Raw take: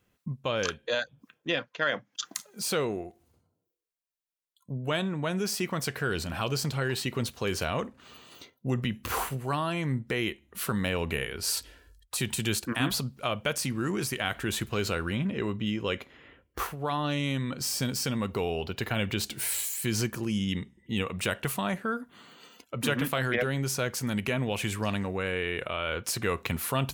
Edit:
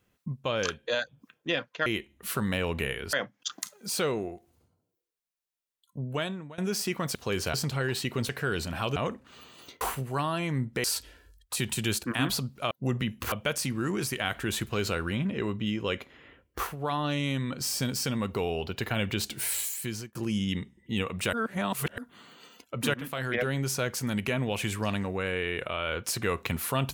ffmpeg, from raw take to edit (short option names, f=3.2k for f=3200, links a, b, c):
-filter_complex "[0:a]asplit=16[a][b][c][d][e][f][g][h][i][j][k][l][m][n][o][p];[a]atrim=end=1.862[q];[b]atrim=start=10.178:end=11.452[r];[c]atrim=start=1.858:end=5.31,asetpts=PTS-STARTPTS,afade=t=out:st=2.952:d=0.5:silence=0.0749894[s];[d]atrim=start=5.31:end=5.882,asetpts=PTS-STARTPTS,afade=t=in:d=0.004:c=hsin:silence=0.0749894[t];[e]atrim=start=7.298:end=7.692[u];[f]atrim=start=6.548:end=7.302[v];[g]atrim=start=5.878:end=6.552[w];[h]atrim=start=7.688:end=8.542[x];[i]atrim=start=9.148:end=10.182[y];[j]atrim=start=11.448:end=13.322[z];[k]atrim=start=8.538:end=9.152[aa];[l]atrim=start=13.318:end=20.15,asetpts=PTS-STARTPTS,afade=t=out:st=6.362:d=0.47[ab];[m]atrim=start=20.15:end=21.332,asetpts=PTS-STARTPTS,afade=t=in:d=0.004:c=hsin[ac];[n]atrim=start=21.328:end=21.982,asetpts=PTS-STARTPTS,areverse[ad];[o]atrim=start=21.978:end=22.94,asetpts=PTS-STARTPTS,afade=t=out:st=0.958:d=0.004:c=hsin:silence=0.237137[ae];[p]atrim=start=22.94,asetpts=PTS-STARTPTS,afade=t=in:d=0.54:silence=0.237137[af];[q][r]acrossfade=d=0.004:c1=hsin:c2=hsin[ag];[s][t]concat=n=2:v=0:a=1[ah];[ag][ah]acrossfade=d=0.004:c1=hsin:c2=hsin[ai];[ai][u]acrossfade=d=0.004:c1=hsin:c2=hsin[aj];[aj][v]acrossfade=d=0.004:c1=hsin:c2=hsin[ak];[ak][w]acrossfade=d=0.004:c1=hsin:c2=hsin[al];[al][x]acrossfade=d=0.004:c1=hsin:c2=hsin[am];[am][y]acrossfade=d=0.004:c1=hsin:c2=hsin[an];[an][z]acrossfade=d=0.004:c1=hsin:c2=hsin[ao];[ao][aa]acrossfade=d=0.004:c1=hsin:c2=hsin[ap];[ab][ac]concat=n=2:v=0:a=1[aq];[ap][aq]acrossfade=d=0.004:c1=hsin:c2=hsin[ar];[ar][ad]acrossfade=d=0.004:c1=hsin:c2=hsin[as];[ae][af]concat=n=2:v=0:a=1[at];[as][at]acrossfade=d=0.004:c1=hsin:c2=hsin"